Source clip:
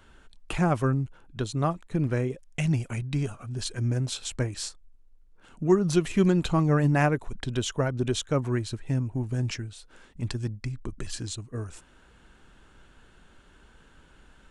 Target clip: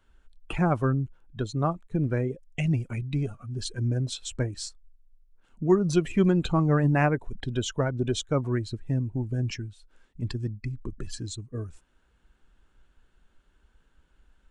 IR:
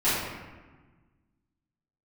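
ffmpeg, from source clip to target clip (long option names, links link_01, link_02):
-af "afftdn=noise_reduction=13:noise_floor=-38"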